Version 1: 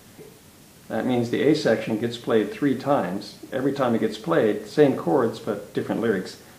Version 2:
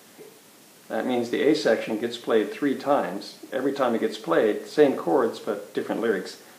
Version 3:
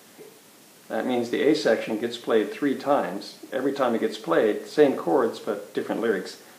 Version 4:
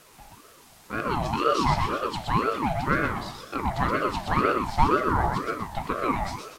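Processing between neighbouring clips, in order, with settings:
HPF 270 Hz 12 dB/oct
nothing audible
feedback echo 0.123 s, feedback 42%, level -4 dB; ring modulator with a swept carrier 640 Hz, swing 40%, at 2 Hz

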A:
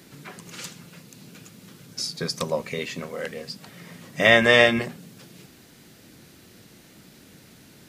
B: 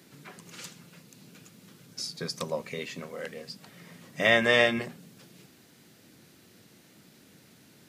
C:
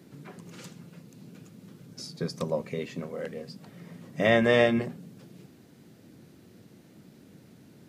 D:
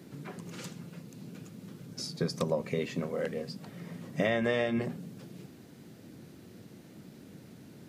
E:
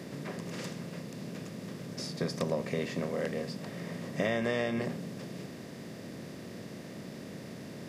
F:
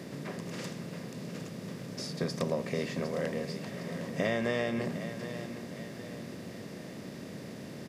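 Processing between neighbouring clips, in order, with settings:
HPF 96 Hz; gain -6 dB
tilt shelf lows +6.5 dB, about 870 Hz
compressor 12:1, threshold -27 dBFS, peak gain reduction 12 dB; gain +2.5 dB
per-bin compression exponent 0.6; gain -4 dB
feedback echo 0.758 s, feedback 46%, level -11 dB

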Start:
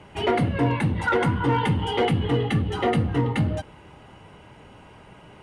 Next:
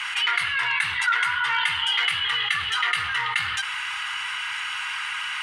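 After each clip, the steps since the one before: inverse Chebyshev high-pass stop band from 670 Hz, stop band 40 dB; high shelf 8900 Hz -7 dB; fast leveller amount 70%; gain +3 dB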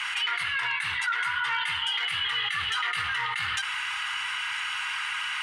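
limiter -18 dBFS, peak gain reduction 9 dB; gain -1.5 dB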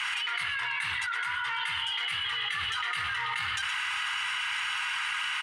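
echo 0.119 s -11 dB; fast leveller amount 100%; gain -7 dB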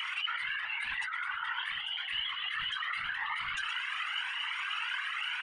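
formant sharpening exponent 1.5; whisperiser; cascading flanger rising 0.89 Hz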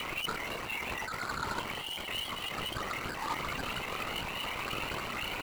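median filter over 25 samples; gain +9 dB

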